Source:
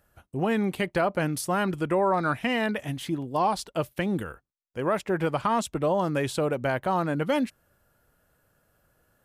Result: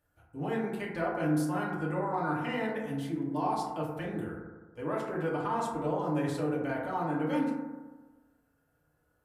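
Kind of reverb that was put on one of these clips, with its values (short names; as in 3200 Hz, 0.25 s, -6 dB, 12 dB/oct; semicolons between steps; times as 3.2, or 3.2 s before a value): FDN reverb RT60 1.3 s, low-frequency decay 1×, high-frequency decay 0.25×, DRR -6 dB; gain -14.5 dB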